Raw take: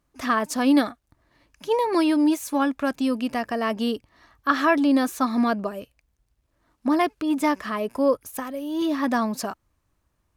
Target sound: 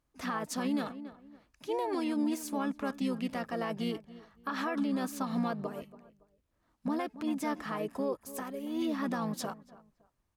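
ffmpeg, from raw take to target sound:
-filter_complex "[0:a]asplit=2[a][b];[b]adelay=281,lowpass=f=2k:p=1,volume=-18.5dB,asplit=2[c][d];[d]adelay=281,lowpass=f=2k:p=1,volume=0.29[e];[a][c][e]amix=inputs=3:normalize=0,alimiter=limit=-17.5dB:level=0:latency=1:release=88,asplit=2[f][g];[g]asetrate=33038,aresample=44100,atempo=1.33484,volume=-6dB[h];[f][h]amix=inputs=2:normalize=0,volume=-8.5dB"

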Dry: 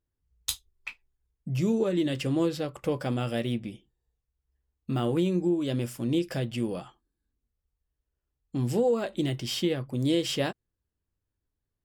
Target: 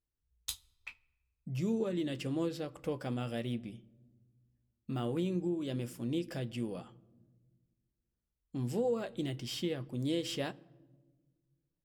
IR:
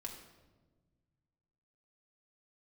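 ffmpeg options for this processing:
-filter_complex "[0:a]asplit=2[a][b];[1:a]atrim=start_sample=2205,lowshelf=f=230:g=8.5[c];[b][c]afir=irnorm=-1:irlink=0,volume=-14dB[d];[a][d]amix=inputs=2:normalize=0,volume=-9dB"

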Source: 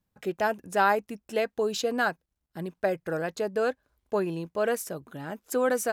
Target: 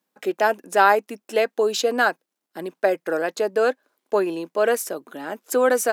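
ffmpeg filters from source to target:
-af "highpass=f=260:w=0.5412,highpass=f=260:w=1.3066,volume=7dB"

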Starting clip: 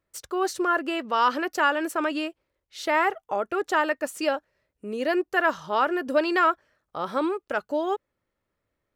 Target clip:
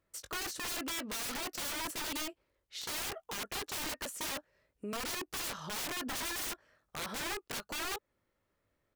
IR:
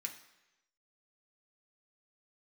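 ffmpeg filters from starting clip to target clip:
-filter_complex "[0:a]asplit=2[a][b];[b]adelay=20,volume=-11dB[c];[a][c]amix=inputs=2:normalize=0,aeval=exprs='(mod(20*val(0)+1,2)-1)/20':c=same,alimiter=level_in=9dB:limit=-24dB:level=0:latency=1:release=169,volume=-9dB"

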